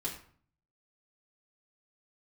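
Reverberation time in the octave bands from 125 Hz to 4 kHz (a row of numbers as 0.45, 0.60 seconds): 0.80, 0.65, 0.50, 0.50, 0.45, 0.35 seconds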